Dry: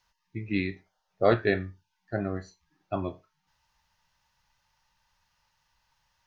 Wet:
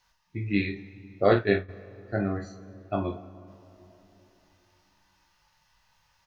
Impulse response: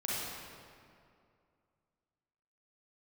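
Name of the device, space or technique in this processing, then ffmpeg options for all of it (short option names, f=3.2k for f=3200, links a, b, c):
ducked reverb: -filter_complex "[0:a]asplit=3[a][b][c];[1:a]atrim=start_sample=2205[d];[b][d]afir=irnorm=-1:irlink=0[e];[c]apad=whole_len=276459[f];[e][f]sidechaincompress=threshold=-41dB:ratio=3:attack=6.6:release=1280,volume=-6.5dB[g];[a][g]amix=inputs=2:normalize=0,aecho=1:1:20|45:0.501|0.447,asplit=3[h][i][j];[h]afade=t=out:st=1.24:d=0.02[k];[i]agate=range=-33dB:threshold=-21dB:ratio=3:detection=peak,afade=t=in:st=1.24:d=0.02,afade=t=out:st=1.68:d=0.02[l];[j]afade=t=in:st=1.68:d=0.02[m];[k][l][m]amix=inputs=3:normalize=0"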